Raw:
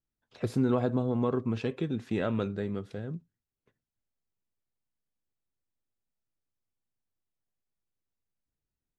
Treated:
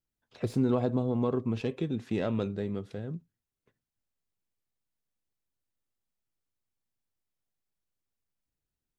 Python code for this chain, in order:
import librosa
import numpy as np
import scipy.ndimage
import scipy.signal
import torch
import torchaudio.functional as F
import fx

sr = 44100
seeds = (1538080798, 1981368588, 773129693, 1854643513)

y = fx.tracing_dist(x, sr, depth_ms=0.024)
y = fx.dynamic_eq(y, sr, hz=1500.0, q=2.1, threshold_db=-53.0, ratio=4.0, max_db=-6)